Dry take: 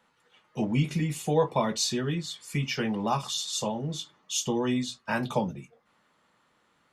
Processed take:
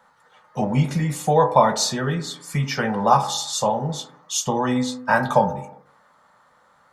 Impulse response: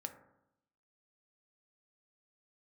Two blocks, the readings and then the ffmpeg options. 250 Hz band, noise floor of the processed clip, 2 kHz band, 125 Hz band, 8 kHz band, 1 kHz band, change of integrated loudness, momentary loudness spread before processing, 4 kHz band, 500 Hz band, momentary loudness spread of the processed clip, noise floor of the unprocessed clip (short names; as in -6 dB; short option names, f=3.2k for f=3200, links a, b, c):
+4.5 dB, -58 dBFS, +9.0 dB, +6.5 dB, +6.0 dB, +13.0 dB, +8.0 dB, 7 LU, +4.0 dB, +8.5 dB, 11 LU, -69 dBFS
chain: -filter_complex "[0:a]asplit=2[a][b];[b]acrossover=split=360 2500:gain=0.141 1 0.0708[c][d][e];[c][d][e]amix=inputs=3:normalize=0[f];[1:a]atrim=start_sample=2205,afade=t=out:st=0.44:d=0.01,atrim=end_sample=19845[g];[f][g]afir=irnorm=-1:irlink=0,volume=6.5dB[h];[a][h]amix=inputs=2:normalize=0,volume=5.5dB"